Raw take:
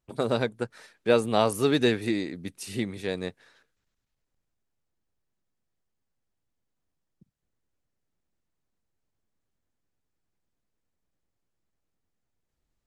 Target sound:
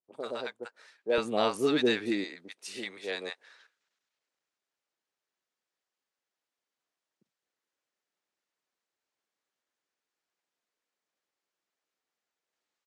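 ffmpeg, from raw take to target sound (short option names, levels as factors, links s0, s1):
-filter_complex "[0:a]dynaudnorm=f=710:g=3:m=3.16,asetnsamples=n=441:p=0,asendcmd='1.18 highpass f 240;2.24 highpass f 570',highpass=430,lowpass=6900,acrossover=split=750[s0][s1];[s1]adelay=40[s2];[s0][s2]amix=inputs=2:normalize=0,volume=0.473"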